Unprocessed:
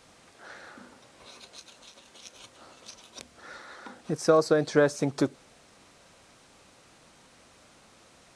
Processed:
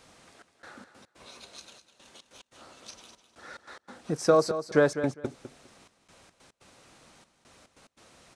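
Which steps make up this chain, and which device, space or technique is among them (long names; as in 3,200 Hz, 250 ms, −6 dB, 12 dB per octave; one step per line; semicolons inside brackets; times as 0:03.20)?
trance gate with a delay (gate pattern "xxxx..xx.x.xx" 143 BPM −60 dB; repeating echo 203 ms, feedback 18%, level −11 dB)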